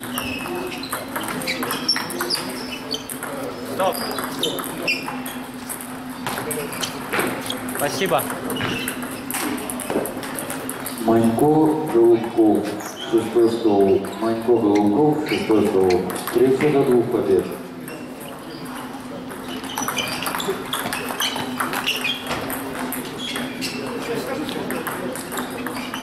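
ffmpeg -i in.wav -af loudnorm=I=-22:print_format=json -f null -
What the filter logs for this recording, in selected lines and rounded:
"input_i" : "-22.3",
"input_tp" : "-5.7",
"input_lra" : "8.2",
"input_thresh" : "-32.4",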